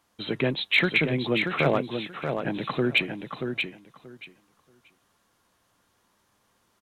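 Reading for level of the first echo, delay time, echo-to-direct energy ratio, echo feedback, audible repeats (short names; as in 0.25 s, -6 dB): -6.0 dB, 0.632 s, -6.0 dB, 17%, 2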